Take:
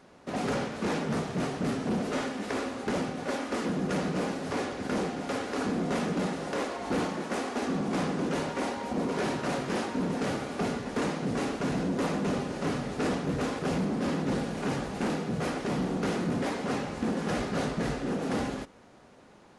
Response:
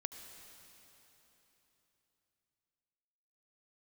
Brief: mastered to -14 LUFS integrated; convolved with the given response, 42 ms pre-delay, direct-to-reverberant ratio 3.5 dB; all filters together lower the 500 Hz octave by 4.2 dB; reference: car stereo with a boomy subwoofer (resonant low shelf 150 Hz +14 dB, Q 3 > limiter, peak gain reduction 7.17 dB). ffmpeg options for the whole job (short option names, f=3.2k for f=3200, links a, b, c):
-filter_complex "[0:a]equalizer=f=500:t=o:g=-3,asplit=2[a][b];[1:a]atrim=start_sample=2205,adelay=42[c];[b][c]afir=irnorm=-1:irlink=0,volume=-1.5dB[d];[a][d]amix=inputs=2:normalize=0,lowshelf=f=150:t=q:w=3:g=14,volume=14.5dB,alimiter=limit=-2.5dB:level=0:latency=1"